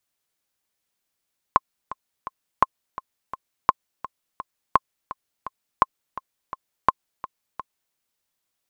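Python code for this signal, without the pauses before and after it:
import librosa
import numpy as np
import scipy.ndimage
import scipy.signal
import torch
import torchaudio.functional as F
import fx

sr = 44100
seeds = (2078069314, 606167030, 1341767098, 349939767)

y = fx.click_track(sr, bpm=169, beats=3, bars=6, hz=1060.0, accent_db=16.5, level_db=-1.5)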